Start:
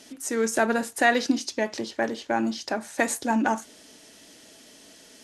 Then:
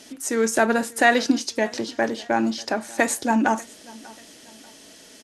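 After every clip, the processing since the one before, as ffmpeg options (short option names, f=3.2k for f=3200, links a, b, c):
-af "aecho=1:1:590|1180:0.0708|0.0255,volume=3.5dB"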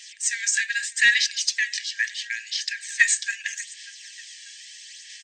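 -af "afftfilt=real='re*between(b*sr/4096,1600,8600)':imag='im*between(b*sr/4096,1600,8600)':win_size=4096:overlap=0.75,acontrast=38,aphaser=in_gain=1:out_gain=1:delay=1.8:decay=0.37:speed=0.77:type=sinusoidal"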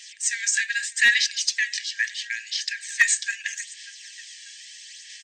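-af "asoftclip=type=hard:threshold=-8dB"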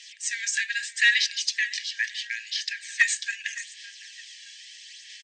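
-filter_complex "[0:a]bandpass=f=3k:t=q:w=0.82:csg=0,asplit=2[a][b];[b]adelay=559.8,volume=-17dB,highshelf=f=4k:g=-12.6[c];[a][c]amix=inputs=2:normalize=0"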